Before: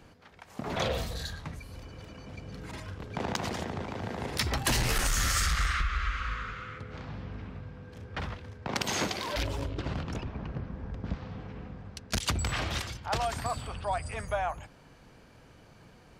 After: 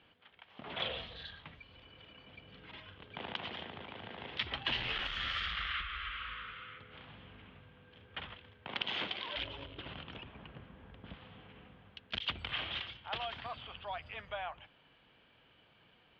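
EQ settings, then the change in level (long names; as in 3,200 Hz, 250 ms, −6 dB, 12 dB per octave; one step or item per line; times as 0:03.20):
resonant band-pass 3,200 Hz, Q 5.2
high-frequency loss of the air 350 metres
spectral tilt −3.5 dB per octave
+16.0 dB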